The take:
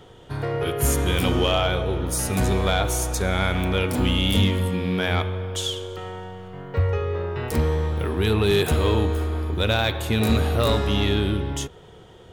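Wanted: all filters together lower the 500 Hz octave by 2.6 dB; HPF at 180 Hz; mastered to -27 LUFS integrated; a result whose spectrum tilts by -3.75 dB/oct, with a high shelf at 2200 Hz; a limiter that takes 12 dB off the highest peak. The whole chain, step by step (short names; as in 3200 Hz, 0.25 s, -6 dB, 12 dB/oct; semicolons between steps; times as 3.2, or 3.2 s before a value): HPF 180 Hz; bell 500 Hz -3.5 dB; high shelf 2200 Hz +7 dB; gain +1 dB; limiter -16 dBFS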